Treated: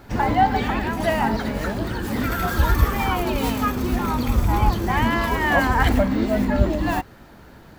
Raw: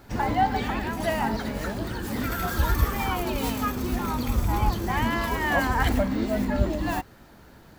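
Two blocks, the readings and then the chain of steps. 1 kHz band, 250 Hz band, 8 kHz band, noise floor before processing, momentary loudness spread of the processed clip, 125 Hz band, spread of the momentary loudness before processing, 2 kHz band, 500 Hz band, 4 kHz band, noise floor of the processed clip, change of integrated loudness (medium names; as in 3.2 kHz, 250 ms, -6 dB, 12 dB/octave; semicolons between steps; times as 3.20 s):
+5.0 dB, +5.0 dB, +1.5 dB, -51 dBFS, 6 LU, +5.0 dB, 6 LU, +5.0 dB, +5.0 dB, +3.5 dB, -46 dBFS, +5.0 dB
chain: tone controls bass 0 dB, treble -4 dB; trim +5 dB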